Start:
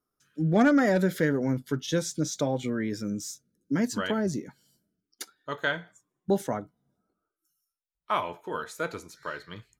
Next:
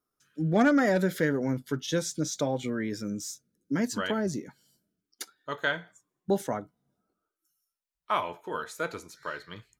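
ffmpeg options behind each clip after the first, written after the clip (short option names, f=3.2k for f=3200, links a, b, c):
-af "lowshelf=f=320:g=-3"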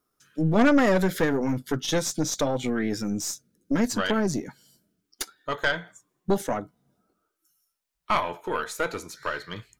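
-filter_complex "[0:a]asplit=2[a][b];[b]acompressor=threshold=-34dB:ratio=6,volume=-1dB[c];[a][c]amix=inputs=2:normalize=0,aeval=exprs='(tanh(7.94*val(0)+0.65)-tanh(0.65))/7.94':c=same,volume=5.5dB"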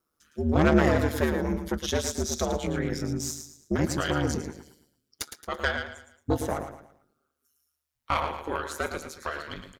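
-filter_complex "[0:a]asplit=2[a][b];[b]aecho=0:1:111|222|333|444:0.398|0.139|0.0488|0.0171[c];[a][c]amix=inputs=2:normalize=0,aeval=exprs='val(0)*sin(2*PI*75*n/s)':c=same"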